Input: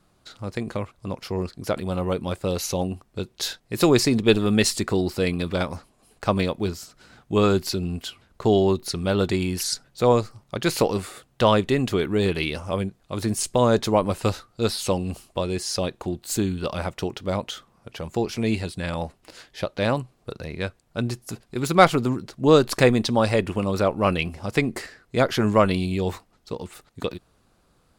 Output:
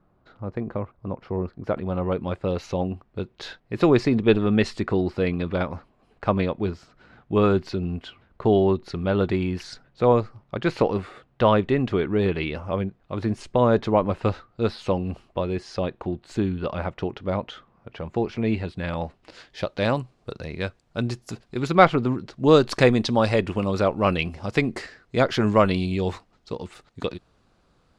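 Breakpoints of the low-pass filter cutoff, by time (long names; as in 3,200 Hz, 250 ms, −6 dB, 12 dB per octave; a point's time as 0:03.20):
0:01.37 1,300 Hz
0:02.26 2,400 Hz
0:18.61 2,400 Hz
0:19.64 6,200 Hz
0:21.45 6,200 Hz
0:21.93 2,600 Hz
0:22.46 5,700 Hz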